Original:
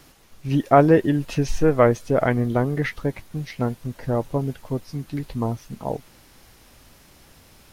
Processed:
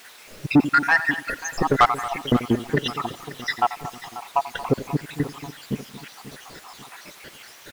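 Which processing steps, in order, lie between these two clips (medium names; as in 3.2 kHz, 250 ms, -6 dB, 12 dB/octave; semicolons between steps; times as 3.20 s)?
random holes in the spectrogram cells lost 84%; on a send: feedback delay 88 ms, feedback 34%, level -18 dB; on the sum: word length cut 10-bit, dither triangular; overdrive pedal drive 24 dB, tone 2.4 kHz, clips at -7 dBFS; echo from a far wall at 39 m, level -15 dB; bit-crushed delay 538 ms, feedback 55%, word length 7-bit, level -15 dB; trim +2.5 dB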